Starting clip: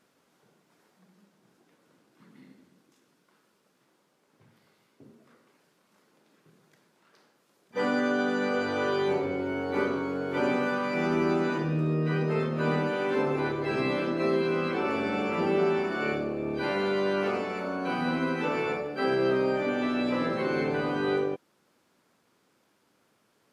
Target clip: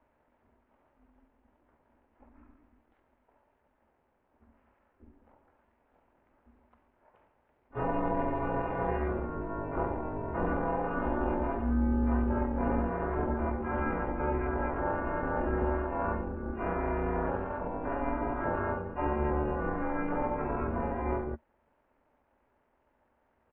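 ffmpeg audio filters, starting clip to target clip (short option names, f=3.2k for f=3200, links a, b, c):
-af "highpass=f=120:w=0.5412,highpass=f=120:w=1.3066,equalizer=f=140:t=q:w=4:g=9,equalizer=f=310:t=q:w=4:g=-7,equalizer=f=510:t=q:w=4:g=-4,equalizer=f=1.3k:t=q:w=4:g=8,equalizer=f=2.6k:t=q:w=4:g=4,lowpass=f=4k:w=0.5412,lowpass=f=4k:w=1.3066,asetrate=24750,aresample=44100,atempo=1.7818,aeval=exprs='val(0)*sin(2*PI*150*n/s)':c=same"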